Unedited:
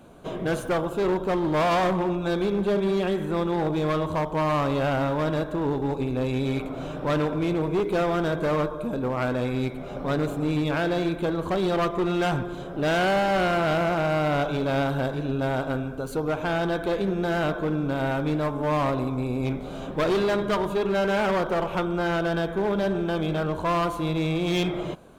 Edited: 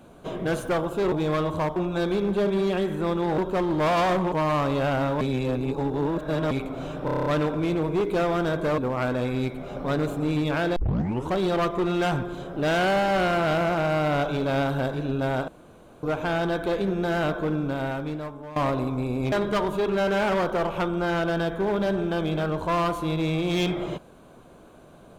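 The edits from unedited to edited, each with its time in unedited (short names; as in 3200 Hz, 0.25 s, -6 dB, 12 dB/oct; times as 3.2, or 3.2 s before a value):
1.12–2.06 swap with 3.68–4.32
5.21–6.51 reverse
7.05 stutter 0.03 s, 8 plays
8.57–8.98 cut
10.96 tape start 0.55 s
15.68–16.23 room tone
17.74–18.76 fade out, to -18 dB
19.52–20.29 cut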